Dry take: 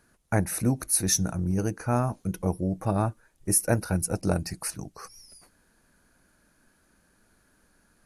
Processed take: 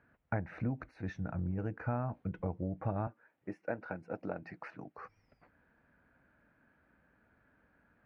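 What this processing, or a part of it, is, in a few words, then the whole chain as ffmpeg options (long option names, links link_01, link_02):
bass amplifier: -filter_complex "[0:a]acompressor=threshold=-28dB:ratio=5,highpass=62,equalizer=frequency=190:width_type=q:width=4:gain=-4,equalizer=frequency=370:width_type=q:width=4:gain=-6,equalizer=frequency=1100:width_type=q:width=4:gain=-3,lowpass=frequency=2300:width=0.5412,lowpass=frequency=2300:width=1.3066,asettb=1/sr,asplit=3[link_01][link_02][link_03];[link_01]atrim=end=3.074[link_04];[link_02]atrim=start=3.07:end=4.98,asetpts=PTS-STARTPTS,afade=type=in:duration=0.004:curve=qsin,afade=type=out:start_time=1.906:duration=0.004:curve=qsin,highpass=240[link_05];[link_03]atrim=start=4.976[link_06];[link_04][link_05]acrossfade=duration=0.004:curve1=hsin:curve2=qsin[link_07];[link_07][link_06]acrossfade=duration=0.004:curve1=qsin:curve2=hsin,volume=-2dB"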